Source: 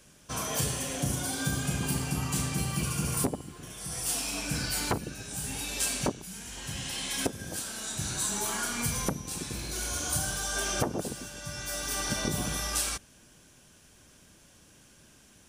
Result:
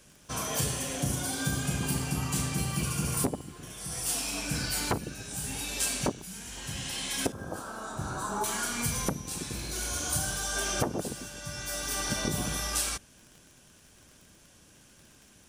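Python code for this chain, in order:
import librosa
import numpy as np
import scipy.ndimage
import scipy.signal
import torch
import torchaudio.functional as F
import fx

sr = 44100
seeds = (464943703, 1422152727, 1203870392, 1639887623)

y = fx.curve_eq(x, sr, hz=(190.0, 1300.0, 2000.0), db=(0, 10, -12), at=(7.32, 8.44))
y = fx.dmg_crackle(y, sr, seeds[0], per_s=36.0, level_db=-43.0)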